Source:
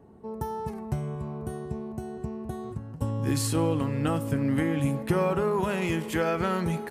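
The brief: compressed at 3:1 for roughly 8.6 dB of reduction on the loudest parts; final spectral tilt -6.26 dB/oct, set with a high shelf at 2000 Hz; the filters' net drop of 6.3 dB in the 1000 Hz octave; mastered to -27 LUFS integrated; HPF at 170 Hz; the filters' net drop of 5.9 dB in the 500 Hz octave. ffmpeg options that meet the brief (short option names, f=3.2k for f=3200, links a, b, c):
-af "highpass=170,equalizer=f=500:t=o:g=-6,equalizer=f=1k:t=o:g=-5.5,highshelf=f=2k:g=-3.5,acompressor=threshold=-37dB:ratio=3,volume=13dB"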